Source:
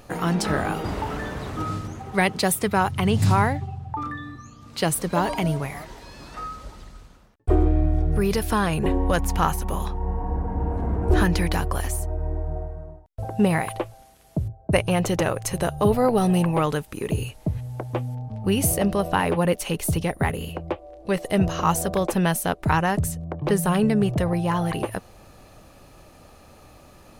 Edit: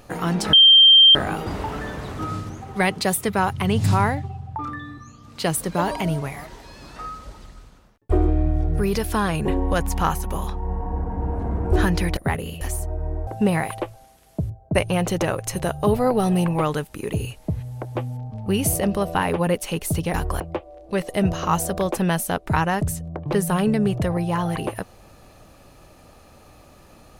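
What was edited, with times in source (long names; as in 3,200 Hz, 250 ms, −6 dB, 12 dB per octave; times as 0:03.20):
0:00.53: insert tone 3,160 Hz −7.5 dBFS 0.62 s
0:11.55–0:11.81: swap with 0:20.12–0:20.56
0:12.47–0:13.25: remove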